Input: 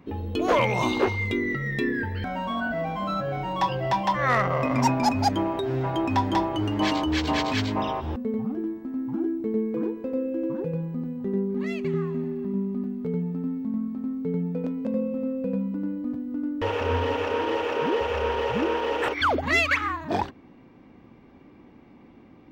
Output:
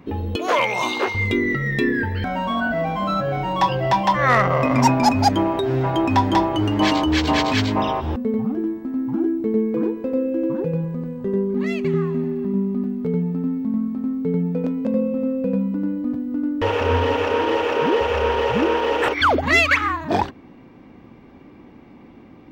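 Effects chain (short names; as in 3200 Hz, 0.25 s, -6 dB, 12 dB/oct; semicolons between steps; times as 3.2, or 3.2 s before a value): 0.36–1.15 HPF 830 Hz 6 dB/oct; 10.84–11.54 comb 1.9 ms, depth 50%; gain +6 dB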